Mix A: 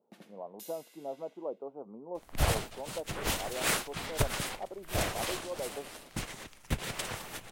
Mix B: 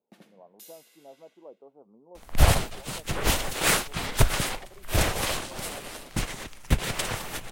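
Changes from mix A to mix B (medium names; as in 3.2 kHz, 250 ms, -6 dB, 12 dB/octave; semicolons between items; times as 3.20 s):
speech -9.5 dB; second sound +7.0 dB; master: add bass shelf 64 Hz +7.5 dB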